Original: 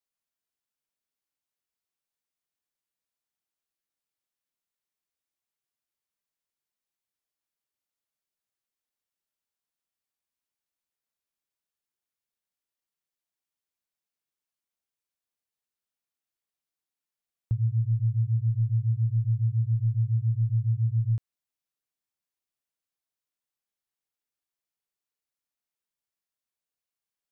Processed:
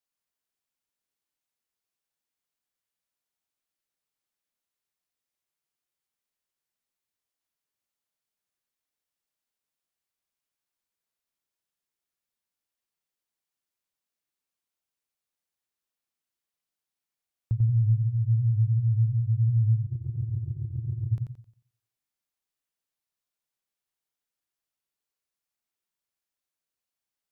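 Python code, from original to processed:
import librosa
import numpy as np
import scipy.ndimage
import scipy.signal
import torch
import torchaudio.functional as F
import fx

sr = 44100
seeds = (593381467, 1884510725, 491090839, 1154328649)

y = fx.over_compress(x, sr, threshold_db=-31.0, ratio=-0.5, at=(19.85, 21.11), fade=0.02)
y = fx.echo_warbled(y, sr, ms=89, feedback_pct=35, rate_hz=2.8, cents=114, wet_db=-5)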